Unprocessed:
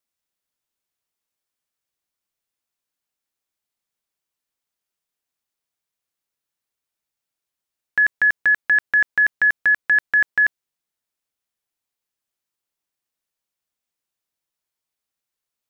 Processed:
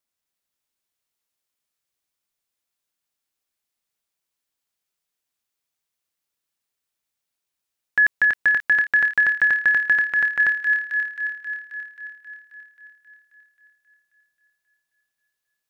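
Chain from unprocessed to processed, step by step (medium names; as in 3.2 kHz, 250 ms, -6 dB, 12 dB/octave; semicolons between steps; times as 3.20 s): feedback echo behind a high-pass 267 ms, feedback 68%, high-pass 1.9 kHz, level -4 dB; 9.92–10.40 s: transient shaper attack -8 dB, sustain -3 dB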